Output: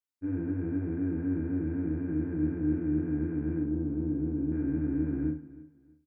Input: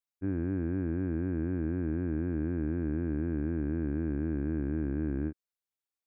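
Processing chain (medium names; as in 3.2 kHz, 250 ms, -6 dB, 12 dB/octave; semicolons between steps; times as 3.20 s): 3.62–4.52 s: peaking EQ 2 kHz -14 dB 1.3 oct; feedback delay 319 ms, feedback 29%, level -19 dB; FDN reverb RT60 0.43 s, low-frequency decay 1.1×, high-frequency decay 0.75×, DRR -4.5 dB; trim -8 dB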